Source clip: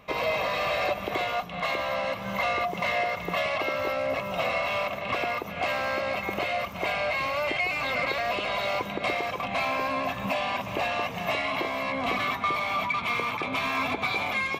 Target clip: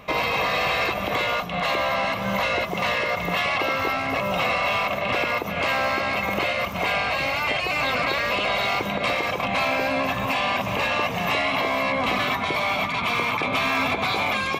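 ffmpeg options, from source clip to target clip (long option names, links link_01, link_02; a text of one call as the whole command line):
ffmpeg -i in.wav -filter_complex "[0:a]afftfilt=real='re*lt(hypot(re,im),0.224)':imag='im*lt(hypot(re,im),0.224)':win_size=1024:overlap=0.75,asplit=2[link_01][link_02];[link_02]alimiter=level_in=1dB:limit=-24dB:level=0:latency=1,volume=-1dB,volume=-0.5dB[link_03];[link_01][link_03]amix=inputs=2:normalize=0,volume=2.5dB" out.wav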